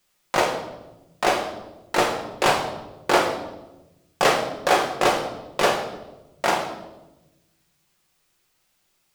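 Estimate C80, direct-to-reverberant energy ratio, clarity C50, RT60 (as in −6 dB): 9.5 dB, 0.0 dB, 7.0 dB, 1.0 s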